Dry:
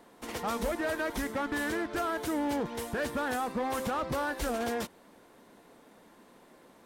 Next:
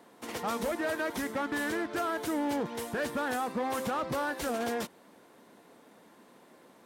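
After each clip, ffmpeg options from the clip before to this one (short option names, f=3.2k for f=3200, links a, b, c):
-af "highpass=110"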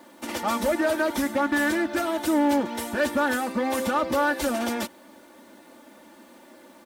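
-af "aecho=1:1:3.4:0.91,acrusher=bits=10:mix=0:aa=0.000001,volume=4.5dB"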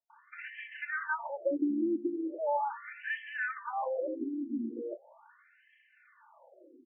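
-filter_complex "[0:a]acrossover=split=210|3000[a][b][c];[b]adelay=100[d];[c]adelay=490[e];[a][d][e]amix=inputs=3:normalize=0,afftfilt=real='re*between(b*sr/1024,260*pow(2300/260,0.5+0.5*sin(2*PI*0.39*pts/sr))/1.41,260*pow(2300/260,0.5+0.5*sin(2*PI*0.39*pts/sr))*1.41)':imag='im*between(b*sr/1024,260*pow(2300/260,0.5+0.5*sin(2*PI*0.39*pts/sr))/1.41,260*pow(2300/260,0.5+0.5*sin(2*PI*0.39*pts/sr))*1.41)':win_size=1024:overlap=0.75,volume=-2.5dB"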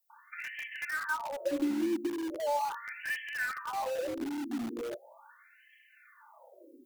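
-filter_complex "[0:a]aemphasis=mode=production:type=50fm,bandreject=f=184.3:t=h:w=4,bandreject=f=368.6:t=h:w=4,bandreject=f=552.9:t=h:w=4,bandreject=f=737.2:t=h:w=4,bandreject=f=921.5:t=h:w=4,bandreject=f=1.1058k:t=h:w=4,bandreject=f=1.2901k:t=h:w=4,bandreject=f=1.4744k:t=h:w=4,bandreject=f=1.6587k:t=h:w=4,bandreject=f=1.843k:t=h:w=4,bandreject=f=2.0273k:t=h:w=4,bandreject=f=2.2116k:t=h:w=4,bandreject=f=2.3959k:t=h:w=4,bandreject=f=2.5802k:t=h:w=4,bandreject=f=2.7645k:t=h:w=4,asplit=2[a][b];[b]aeval=exprs='(mod(53.1*val(0)+1,2)-1)/53.1':c=same,volume=-8dB[c];[a][c]amix=inputs=2:normalize=0"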